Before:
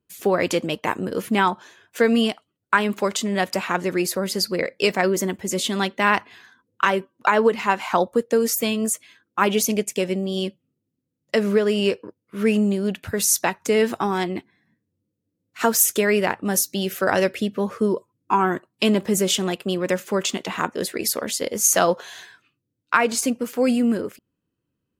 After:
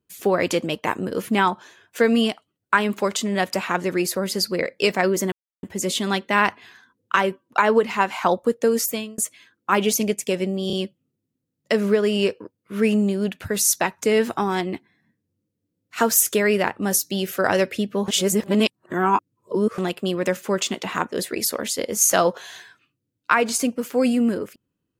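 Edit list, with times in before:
5.32 insert silence 0.31 s
8.51–8.87 fade out
10.36 stutter 0.03 s, 3 plays
17.71–19.41 reverse

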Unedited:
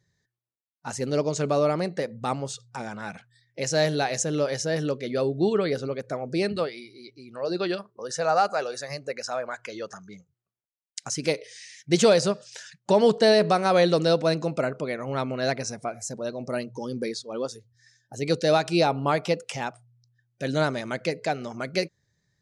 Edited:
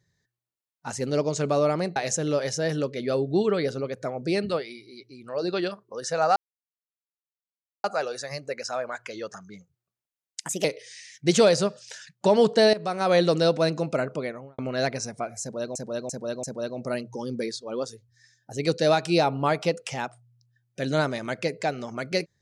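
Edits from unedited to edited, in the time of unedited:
1.96–4.03 cut
8.43 insert silence 1.48 s
10.99–11.29 speed 123%
13.38–13.83 fade in, from -16.5 dB
14.83–15.23 studio fade out
16.06–16.4 loop, 4 plays

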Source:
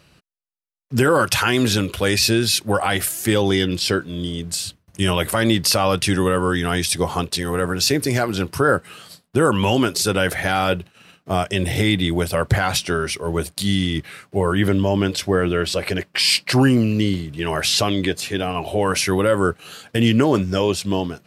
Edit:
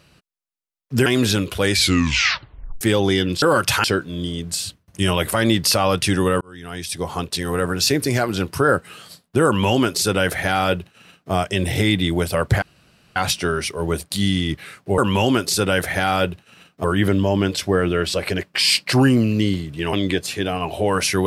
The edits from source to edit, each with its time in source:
1.06–1.48 move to 3.84
2.13 tape stop 1.10 s
6.41–7.51 fade in
9.46–11.32 copy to 14.44
12.62 insert room tone 0.54 s
17.53–17.87 cut

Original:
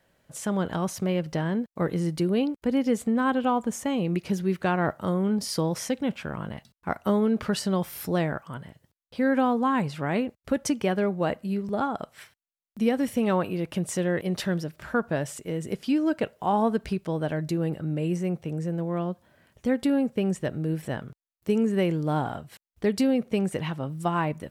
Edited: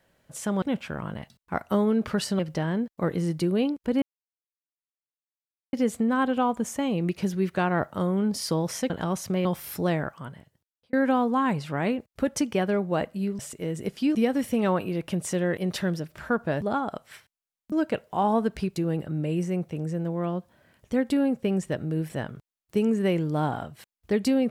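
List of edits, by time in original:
0.62–1.17 swap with 5.97–7.74
2.8 insert silence 1.71 s
8.41–9.22 fade out
11.68–12.79 swap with 15.25–16.01
17.05–17.49 cut

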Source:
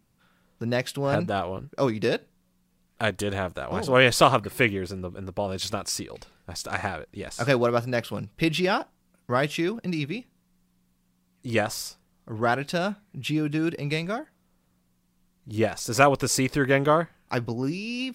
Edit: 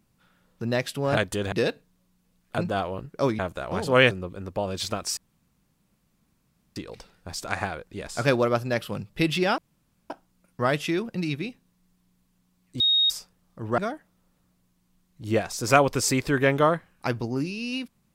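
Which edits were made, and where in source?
1.17–1.98 swap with 3.04–3.39
4.11–4.92 cut
5.98 insert room tone 1.59 s
8.8 insert room tone 0.52 s
11.5–11.8 bleep 3740 Hz -17.5 dBFS
12.48–14.05 cut

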